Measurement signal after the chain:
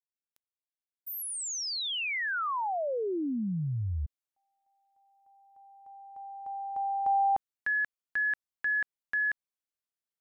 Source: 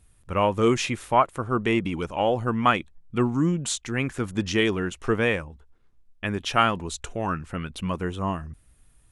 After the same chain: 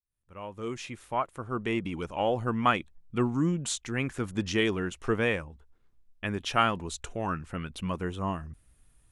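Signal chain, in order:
fade in at the beginning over 2.38 s
level −4 dB

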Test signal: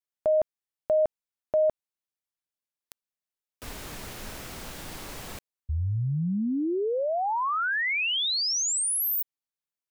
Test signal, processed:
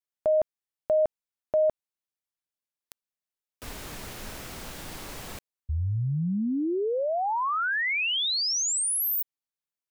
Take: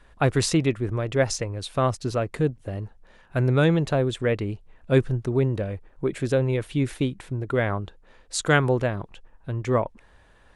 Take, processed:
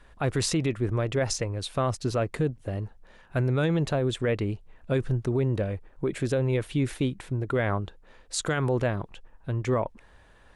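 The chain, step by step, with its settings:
brickwall limiter −17 dBFS

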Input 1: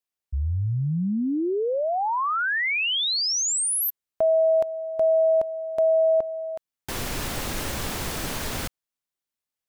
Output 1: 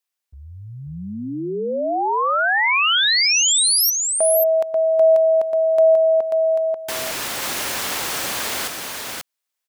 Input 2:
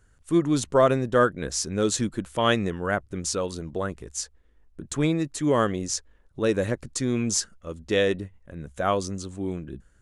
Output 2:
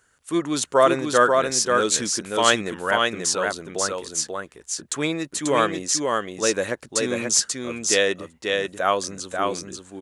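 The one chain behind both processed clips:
high-pass filter 800 Hz 6 dB per octave
on a send: single-tap delay 538 ms −3.5 dB
on the sum: level +6.5 dB

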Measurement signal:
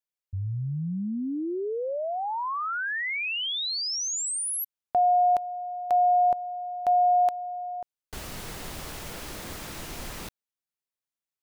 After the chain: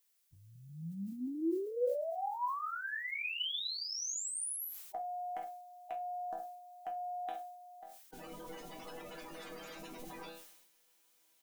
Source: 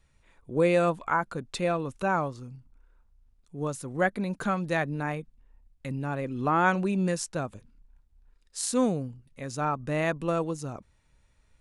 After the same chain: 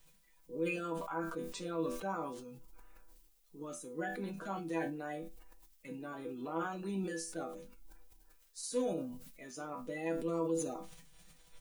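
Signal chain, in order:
spectral magnitudes quantised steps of 30 dB
low shelf with overshoot 200 Hz −7.5 dB, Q 1.5
comb filter 6.4 ms, depth 55%
dynamic equaliser 280 Hz, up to +4 dB, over −39 dBFS, Q 1.7
brickwall limiter −19.5 dBFS
reversed playback
upward compression, threshold −38 dBFS
reversed playback
resonators tuned to a chord E3 minor, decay 0.24 s
background noise blue −79 dBFS
level that may fall only so fast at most 53 dB per second
level +4 dB

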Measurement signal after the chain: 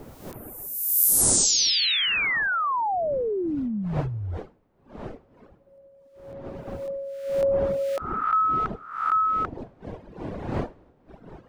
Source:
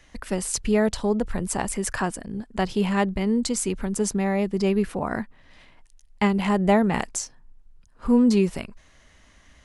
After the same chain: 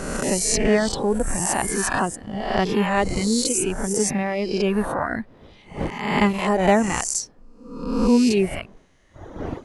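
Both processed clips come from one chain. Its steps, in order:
peak hold with a rise ahead of every peak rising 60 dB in 1.24 s
wind on the microphone 460 Hz −39 dBFS
reverb reduction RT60 1.9 s
level +2.5 dB

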